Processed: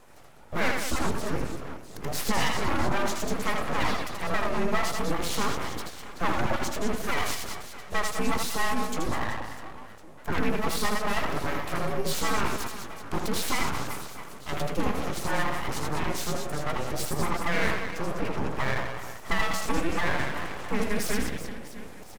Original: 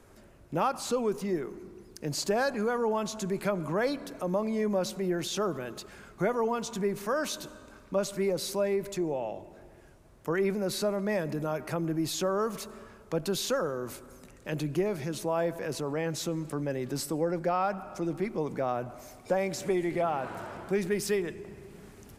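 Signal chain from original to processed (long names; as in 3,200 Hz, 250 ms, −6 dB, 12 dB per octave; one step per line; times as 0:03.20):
frequency inversion band by band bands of 500 Hz
reverse bouncing-ball delay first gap 80 ms, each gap 1.5×, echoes 5
full-wave rectification
level +3.5 dB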